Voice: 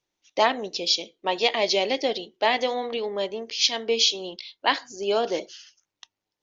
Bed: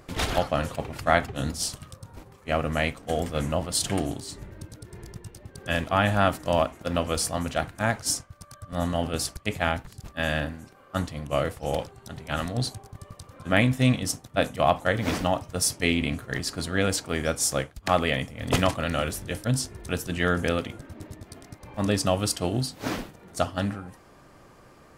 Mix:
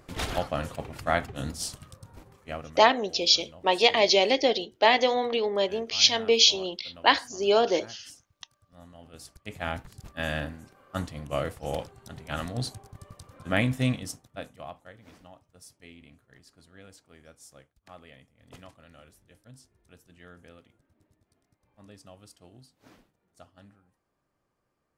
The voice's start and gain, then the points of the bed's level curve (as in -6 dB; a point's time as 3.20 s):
2.40 s, +2.0 dB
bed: 2.39 s -4.5 dB
2.87 s -23.5 dB
8.98 s -23.5 dB
9.79 s -4 dB
13.82 s -4 dB
15.00 s -26.5 dB